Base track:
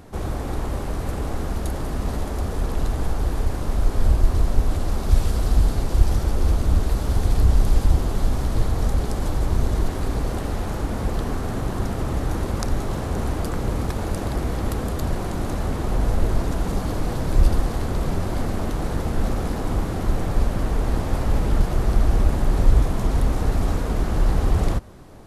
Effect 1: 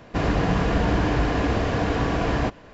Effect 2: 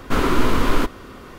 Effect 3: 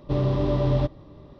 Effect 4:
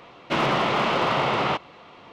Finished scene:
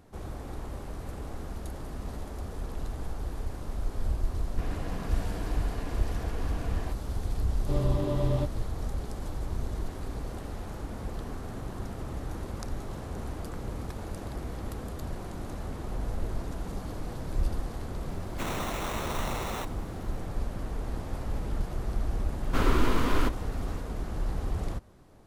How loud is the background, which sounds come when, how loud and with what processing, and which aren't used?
base track −12 dB
0:04.43: mix in 1 −17 dB
0:07.59: mix in 3 −6 dB
0:18.08: mix in 4 −12.5 dB + sample-rate reduction 4,800 Hz
0:22.43: mix in 2 −8 dB

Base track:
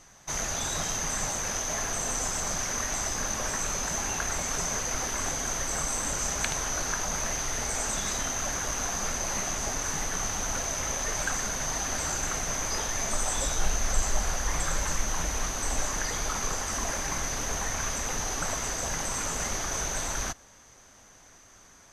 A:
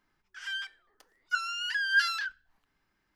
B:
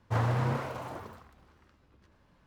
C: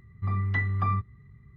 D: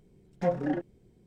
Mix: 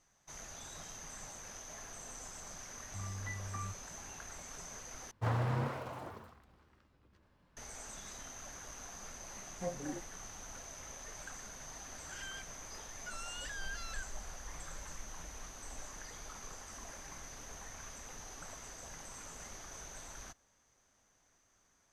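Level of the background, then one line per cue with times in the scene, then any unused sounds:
base track −18 dB
0:02.72: mix in C −16 dB
0:05.11: overwrite with B −5 dB
0:09.19: mix in D −12.5 dB
0:11.75: mix in A −5 dB + downward compressor, threshold −39 dBFS

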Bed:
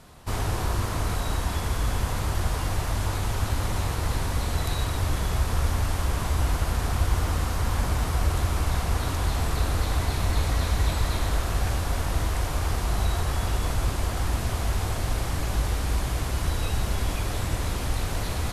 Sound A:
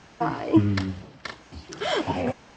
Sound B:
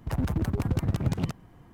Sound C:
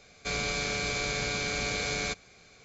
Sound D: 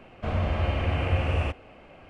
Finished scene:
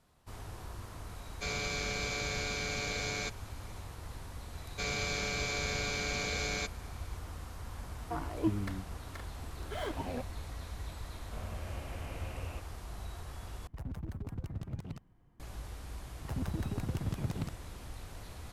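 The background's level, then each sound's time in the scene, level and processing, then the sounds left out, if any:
bed −18.5 dB
0:01.16: mix in C −5 dB
0:04.53: mix in C −4 dB
0:07.90: mix in A −12.5 dB + running median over 9 samples
0:11.09: mix in D −17 dB
0:13.67: overwrite with B −16.5 dB + low-shelf EQ 79 Hz +9 dB
0:16.18: mix in B −9 dB

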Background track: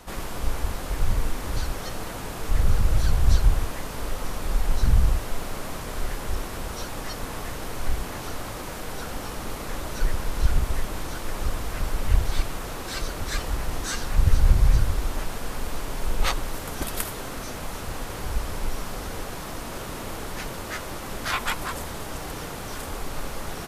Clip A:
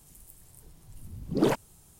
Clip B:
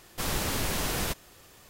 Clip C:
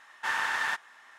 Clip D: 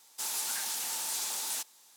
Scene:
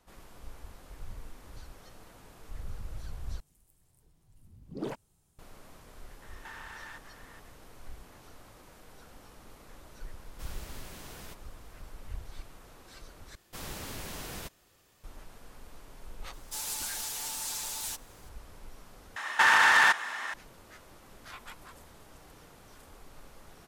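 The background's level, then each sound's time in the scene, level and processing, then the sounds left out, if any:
background track −20 dB
0:03.40: overwrite with A −12.5 dB + high-shelf EQ 7,500 Hz −6 dB
0:06.22: mix in C −2 dB + downward compressor, threshold −42 dBFS
0:10.21: mix in B −17.5 dB
0:13.35: overwrite with B −11 dB
0:16.33: mix in D −4.5 dB + comb filter 6.9 ms, depth 85%
0:19.16: overwrite with C −11 dB + boost into a limiter +28.5 dB

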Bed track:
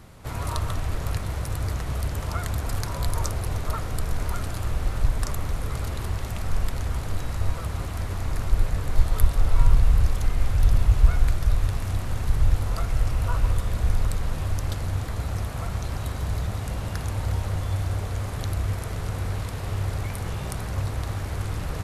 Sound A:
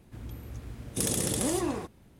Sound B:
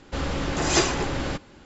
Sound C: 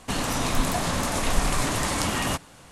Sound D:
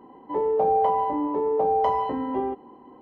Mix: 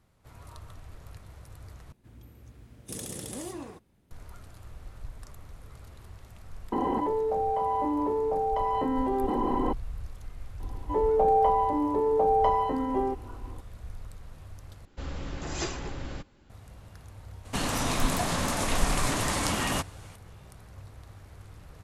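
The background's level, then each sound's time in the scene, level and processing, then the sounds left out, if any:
bed track −19 dB
0:01.92: overwrite with A −9.5 dB
0:06.72: mix in D −8 dB + envelope flattener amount 100%
0:10.60: mix in D −1 dB
0:14.85: overwrite with B −13 dB + low-shelf EQ 110 Hz +9.5 dB
0:17.45: mix in C −2.5 dB

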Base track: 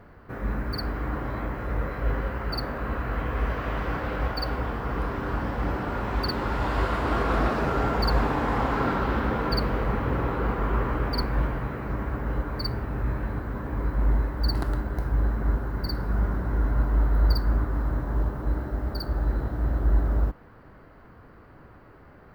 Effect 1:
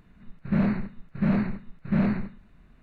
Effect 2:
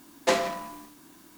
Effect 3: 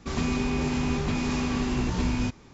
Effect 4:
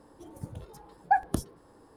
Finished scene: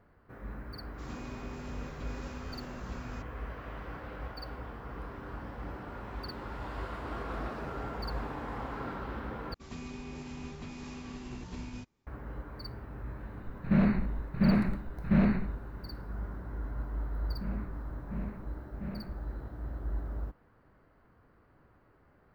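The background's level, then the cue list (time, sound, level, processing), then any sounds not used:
base track −13.5 dB
0:00.92: mix in 3 −18 dB + buffer that repeats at 0:01.51
0:09.54: overwrite with 3 −14.5 dB + expander for the loud parts, over −46 dBFS
0:13.19: mix in 1 −1.5 dB
0:16.89: mix in 1 −17 dB + high-frequency loss of the air 240 metres
not used: 2, 4

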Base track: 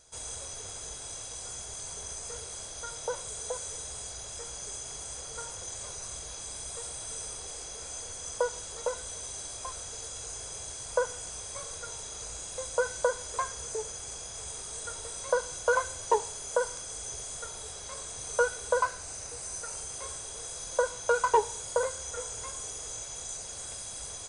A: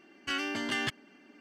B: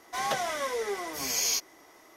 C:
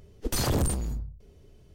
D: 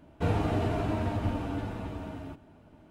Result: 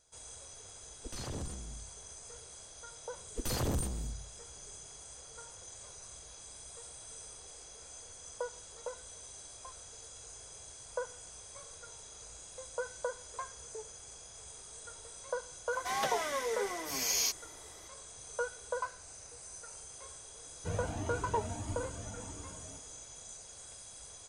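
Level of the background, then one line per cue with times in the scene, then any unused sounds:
base track −10 dB
0:00.80: mix in C −14 dB + Chebyshev low-pass filter 7,200 Hz
0:03.13: mix in C −7.5 dB
0:15.72: mix in B −3.5 dB
0:20.44: mix in D −6.5 dB + flanger whose copies keep moving one way rising 1.6 Hz
not used: A

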